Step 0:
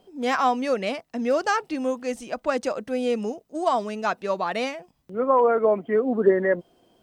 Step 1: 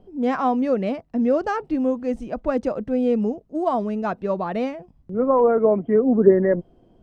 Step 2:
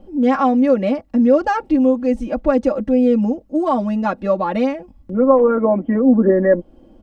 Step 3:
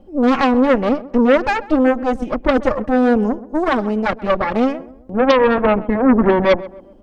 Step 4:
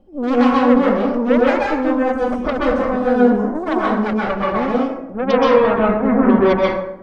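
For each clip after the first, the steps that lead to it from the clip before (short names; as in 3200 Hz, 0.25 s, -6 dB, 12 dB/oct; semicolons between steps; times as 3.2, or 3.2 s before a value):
tilt -4.5 dB/oct; gain -2 dB
comb 3.6 ms, depth 99%; in parallel at -1.5 dB: compressor, threshold -25 dBFS, peak gain reduction 15.5 dB
added harmonics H 8 -14 dB, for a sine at -1 dBFS; tape echo 0.13 s, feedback 46%, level -16 dB, low-pass 1100 Hz; gain -1 dB
plate-style reverb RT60 0.78 s, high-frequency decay 0.55×, pre-delay 0.115 s, DRR -5 dB; gain -7 dB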